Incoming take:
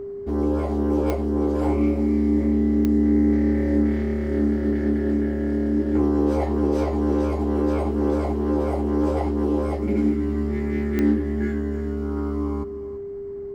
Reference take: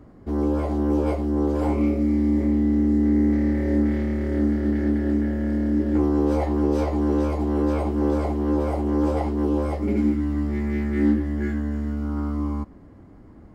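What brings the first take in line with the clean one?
de-click; notch 400 Hz, Q 30; inverse comb 0.335 s -15 dB

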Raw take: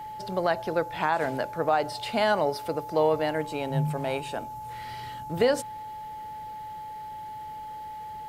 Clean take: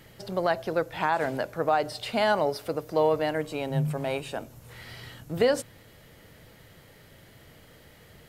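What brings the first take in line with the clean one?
notch 860 Hz, Q 30

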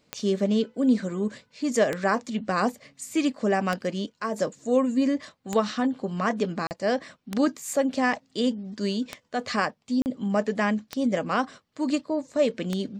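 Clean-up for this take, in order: de-click; interpolate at 6.67/10.02, 39 ms

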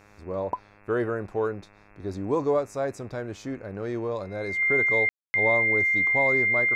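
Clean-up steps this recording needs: de-hum 102.9 Hz, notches 26; notch 2100 Hz, Q 30; room tone fill 5.09–5.34

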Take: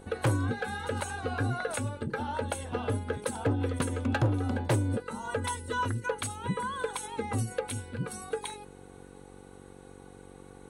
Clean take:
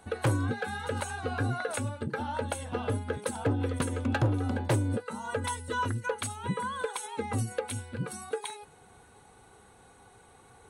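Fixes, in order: de-hum 47.2 Hz, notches 11

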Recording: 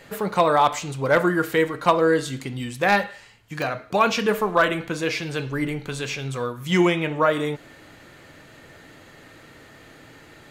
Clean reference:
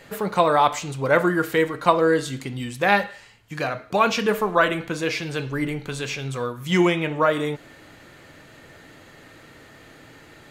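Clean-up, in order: clip repair -8 dBFS; interpolate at 3.62, 1.5 ms

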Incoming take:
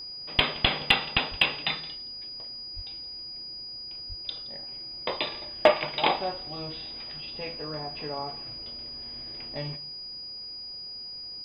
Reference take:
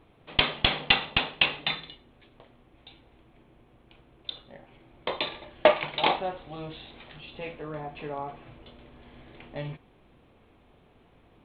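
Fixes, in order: clip repair -6.5 dBFS; notch 4900 Hz, Q 30; 1.3–1.42 HPF 140 Hz 24 dB/oct; 2.75–2.87 HPF 140 Hz 24 dB/oct; 4.08–4.2 HPF 140 Hz 24 dB/oct; inverse comb 0.17 s -21.5 dB

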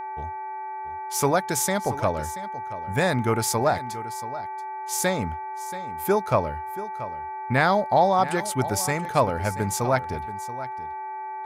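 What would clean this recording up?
de-hum 385.4 Hz, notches 6; notch 870 Hz, Q 30; inverse comb 0.681 s -14.5 dB

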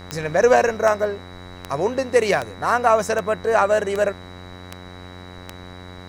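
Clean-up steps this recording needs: de-click; de-hum 90.4 Hz, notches 25; notch 3900 Hz, Q 30

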